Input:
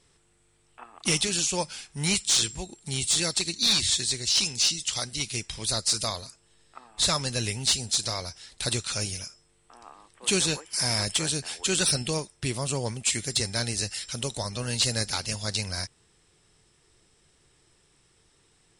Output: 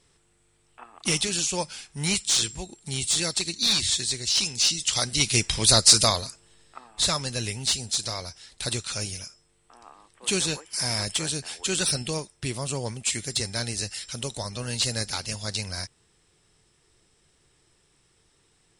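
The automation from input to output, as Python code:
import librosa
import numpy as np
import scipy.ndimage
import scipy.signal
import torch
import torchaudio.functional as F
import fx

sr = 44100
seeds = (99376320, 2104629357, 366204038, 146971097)

y = fx.gain(x, sr, db=fx.line((4.52, 0.0), (5.4, 10.0), (5.92, 10.0), (7.21, -1.0)))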